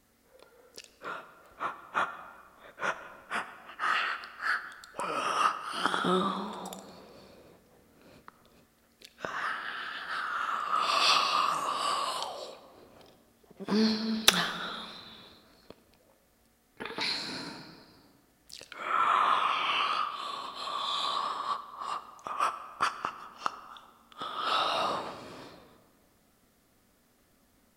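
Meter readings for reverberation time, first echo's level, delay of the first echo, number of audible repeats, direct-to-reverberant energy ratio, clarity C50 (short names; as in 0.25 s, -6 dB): 1.9 s, none, none, none, 11.0 dB, 12.5 dB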